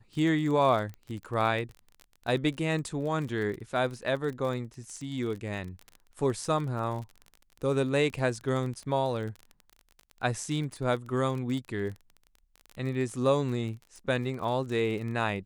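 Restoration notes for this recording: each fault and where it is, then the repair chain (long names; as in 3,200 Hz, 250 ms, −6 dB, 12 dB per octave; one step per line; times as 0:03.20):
surface crackle 30 per second −35 dBFS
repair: click removal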